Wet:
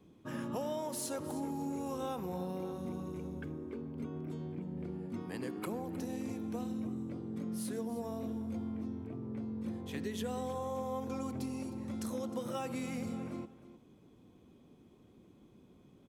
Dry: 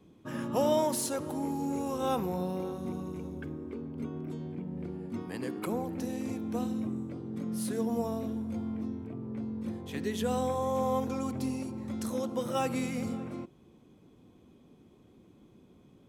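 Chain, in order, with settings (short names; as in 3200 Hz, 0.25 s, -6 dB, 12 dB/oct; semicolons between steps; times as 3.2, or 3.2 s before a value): compressor, threshold -32 dBFS, peak gain reduction 9.5 dB; echo 0.31 s -15.5 dB; gain -2.5 dB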